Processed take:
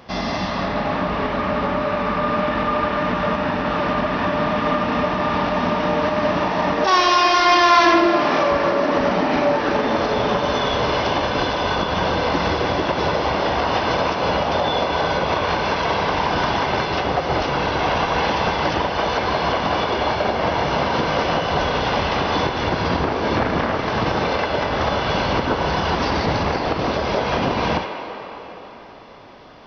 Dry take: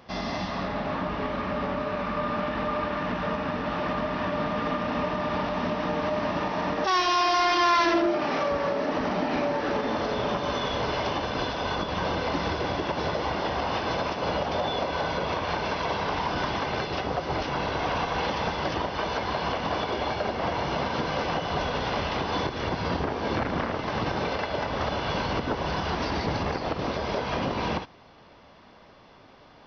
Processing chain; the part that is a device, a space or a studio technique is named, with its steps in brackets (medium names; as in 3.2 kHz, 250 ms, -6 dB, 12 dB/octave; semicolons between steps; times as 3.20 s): filtered reverb send (on a send: high-pass 430 Hz 12 dB/octave + low-pass 4.4 kHz + reverberation RT60 4.3 s, pre-delay 18 ms, DRR 4.5 dB); on the sum: trim +7 dB